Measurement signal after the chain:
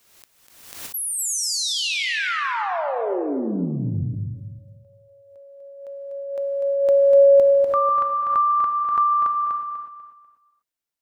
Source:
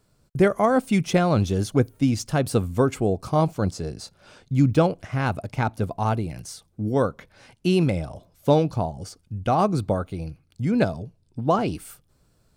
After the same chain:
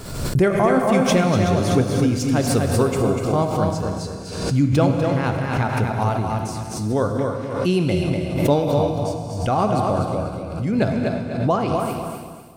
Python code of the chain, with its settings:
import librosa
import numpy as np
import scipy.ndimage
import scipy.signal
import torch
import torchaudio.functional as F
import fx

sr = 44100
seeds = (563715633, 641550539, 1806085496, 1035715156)

y = fx.echo_feedback(x, sr, ms=246, feedback_pct=32, wet_db=-5.0)
y = fx.rev_gated(y, sr, seeds[0], gate_ms=390, shape='flat', drr_db=3.5)
y = fx.pre_swell(y, sr, db_per_s=57.0)